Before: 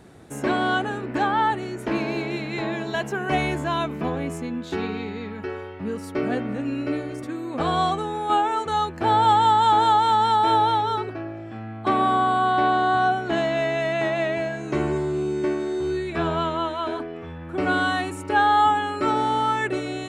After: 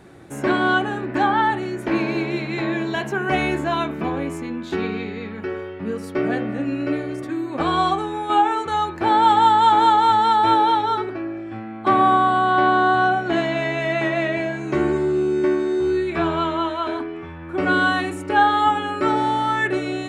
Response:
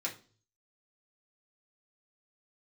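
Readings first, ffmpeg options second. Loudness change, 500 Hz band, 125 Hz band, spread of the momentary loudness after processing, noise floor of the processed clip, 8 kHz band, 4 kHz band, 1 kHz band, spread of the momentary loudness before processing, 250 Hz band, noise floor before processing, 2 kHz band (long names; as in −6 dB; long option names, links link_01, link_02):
+3.0 dB, +3.0 dB, +0.5 dB, 12 LU, −34 dBFS, can't be measured, +1.5 dB, +2.5 dB, 13 LU, +4.0 dB, −36 dBFS, +4.5 dB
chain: -filter_complex "[0:a]asplit=2[link_01][link_02];[1:a]atrim=start_sample=2205,lowpass=3800[link_03];[link_02][link_03]afir=irnorm=-1:irlink=0,volume=-4.5dB[link_04];[link_01][link_04]amix=inputs=2:normalize=0"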